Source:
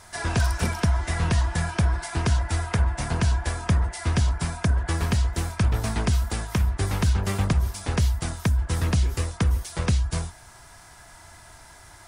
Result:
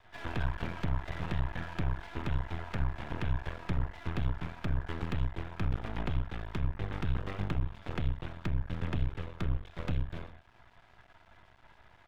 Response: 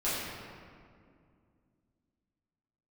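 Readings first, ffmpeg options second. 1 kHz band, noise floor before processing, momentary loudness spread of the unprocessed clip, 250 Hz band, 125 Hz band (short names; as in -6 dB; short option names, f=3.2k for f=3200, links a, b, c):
-10.5 dB, -48 dBFS, 3 LU, -10.0 dB, -11.5 dB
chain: -filter_complex "[0:a]aresample=8000,aresample=44100,asplit=2[a][b];[1:a]atrim=start_sample=2205,atrim=end_sample=6174,lowpass=3.5k[c];[b][c]afir=irnorm=-1:irlink=0,volume=-13.5dB[d];[a][d]amix=inputs=2:normalize=0,aeval=exprs='max(val(0),0)':c=same,volume=-8.5dB"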